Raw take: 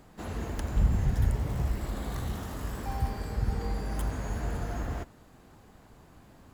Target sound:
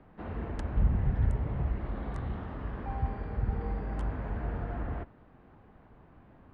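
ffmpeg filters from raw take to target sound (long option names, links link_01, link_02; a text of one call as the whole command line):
ffmpeg -i in.wav -filter_complex "[0:a]aemphasis=mode=reproduction:type=50kf,acrossover=split=140|700|3100[link_01][link_02][link_03][link_04];[link_04]acrusher=bits=6:mix=0:aa=0.000001[link_05];[link_01][link_02][link_03][link_05]amix=inputs=4:normalize=0,aresample=22050,aresample=44100,volume=-1.5dB" out.wav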